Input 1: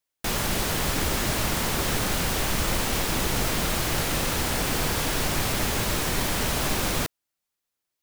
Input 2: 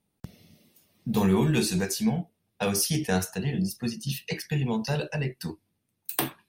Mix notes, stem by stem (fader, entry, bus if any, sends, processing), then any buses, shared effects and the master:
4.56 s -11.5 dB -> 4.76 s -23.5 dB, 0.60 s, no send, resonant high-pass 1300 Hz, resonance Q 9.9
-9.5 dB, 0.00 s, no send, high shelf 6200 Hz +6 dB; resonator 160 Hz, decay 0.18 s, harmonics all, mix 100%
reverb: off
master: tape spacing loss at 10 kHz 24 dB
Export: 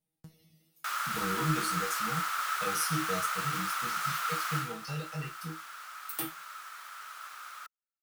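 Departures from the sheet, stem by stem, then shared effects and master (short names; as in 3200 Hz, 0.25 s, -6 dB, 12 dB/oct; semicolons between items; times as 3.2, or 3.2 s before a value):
stem 2 -9.5 dB -> -1.5 dB; master: missing tape spacing loss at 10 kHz 24 dB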